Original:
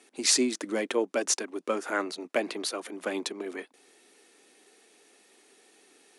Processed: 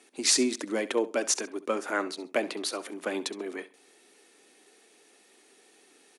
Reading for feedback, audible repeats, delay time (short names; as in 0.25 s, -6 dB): 24%, 2, 67 ms